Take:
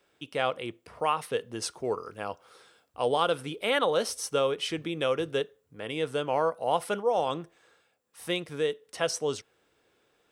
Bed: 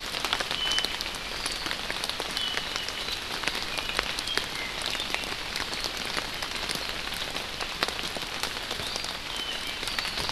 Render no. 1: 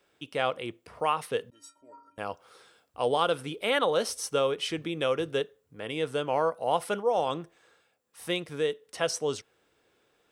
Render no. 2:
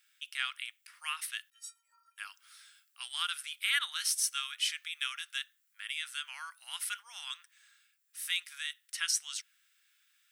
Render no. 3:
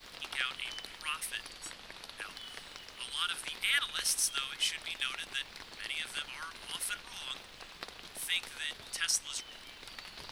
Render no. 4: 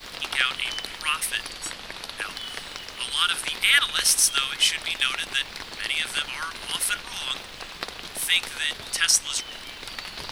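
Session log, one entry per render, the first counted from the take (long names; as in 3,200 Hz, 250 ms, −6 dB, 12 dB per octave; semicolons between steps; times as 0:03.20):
0:01.50–0:02.18: stiff-string resonator 280 Hz, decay 0.47 s, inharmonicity 0.03
Butterworth high-pass 1,500 Hz 36 dB per octave; high-shelf EQ 8,100 Hz +10.5 dB
mix in bed −17 dB
level +11.5 dB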